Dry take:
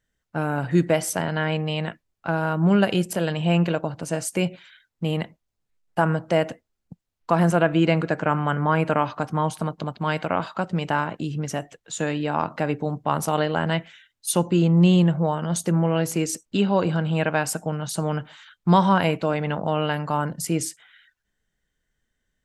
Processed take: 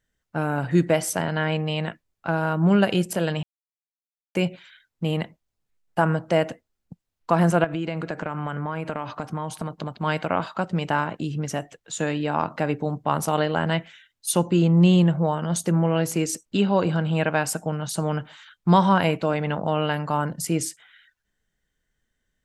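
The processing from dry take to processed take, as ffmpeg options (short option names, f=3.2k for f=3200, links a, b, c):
-filter_complex "[0:a]asettb=1/sr,asplit=3[a][b][c];[a]atrim=end=7.644[d];[b]atrim=start=7.64:end=10.03,asetpts=PTS-STARTPTS,afade=t=in:d=0.004:c=qsin,afade=t=out:st=2.386:d=0.004:c=qsin,acompressor=threshold=-24dB:ratio=6:attack=3.2:release=140:knee=1:detection=peak[e];[c]atrim=start=10.026[f];[d][e]acrossfade=d=0.004:c1=hsin:c2=qsin[g];[g][f]acrossfade=d=0.004:c1=qsin:c2=hsin,asplit=3[h][i][j];[h]atrim=end=3.43,asetpts=PTS-STARTPTS,afade=t=out:st=3.426:d=0.004:c=hsin[k];[i]atrim=start=3.43:end=4.35,asetpts=PTS-STARTPTS,volume=0[l];[j]atrim=start=4.35,asetpts=PTS-STARTPTS,afade=t=in:d=0.004:c=hsin[m];[k][l][m]concat=n=3:v=0:a=1"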